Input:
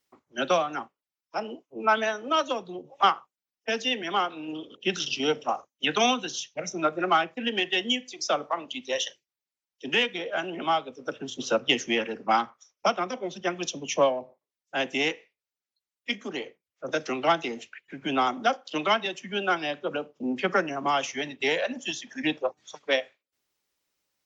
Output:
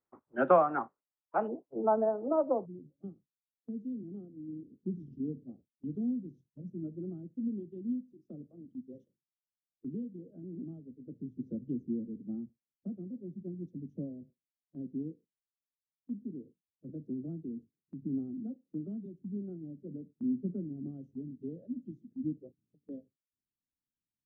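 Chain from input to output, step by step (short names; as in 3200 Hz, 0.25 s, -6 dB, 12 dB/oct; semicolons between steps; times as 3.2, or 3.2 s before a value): inverse Chebyshev low-pass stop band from 4800 Hz, stop band 60 dB, from 1.47 s stop band from 2600 Hz, from 2.65 s stop band from 880 Hz; gate -57 dBFS, range -7 dB; gain +1 dB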